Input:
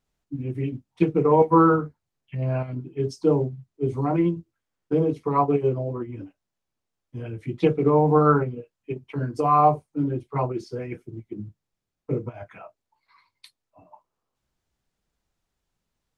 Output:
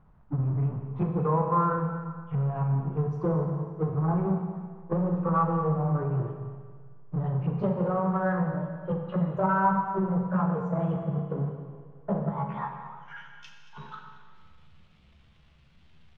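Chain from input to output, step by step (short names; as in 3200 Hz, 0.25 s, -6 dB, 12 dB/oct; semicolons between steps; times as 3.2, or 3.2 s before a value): gliding pitch shift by +7.5 st starting unshifted; resonant low shelf 220 Hz +6.5 dB, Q 3; compressor 6:1, threshold -26 dBFS, peak gain reduction 15 dB; power-law curve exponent 0.7; low-pass sweep 1100 Hz -> 3200 Hz, 12.58–13.73; echo 0.228 s -14.5 dB; Schroeder reverb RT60 1.7 s, combs from 30 ms, DRR 3.5 dB; gain -2.5 dB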